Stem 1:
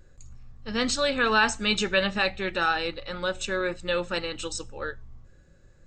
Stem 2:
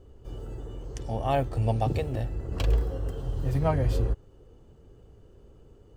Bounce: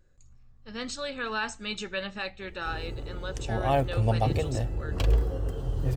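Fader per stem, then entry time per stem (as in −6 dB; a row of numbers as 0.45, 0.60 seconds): −9.5, +1.0 decibels; 0.00, 2.40 seconds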